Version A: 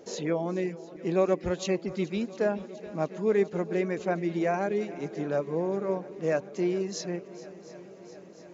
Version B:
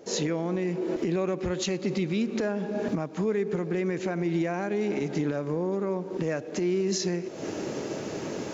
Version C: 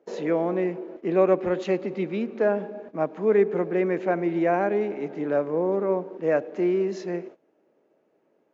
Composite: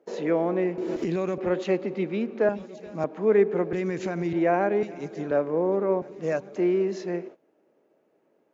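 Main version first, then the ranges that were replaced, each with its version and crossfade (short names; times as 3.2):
C
0.78–1.38 from B
2.49–3.04 from A
3.73–4.33 from B
4.83–5.31 from A
6.02–6.56 from A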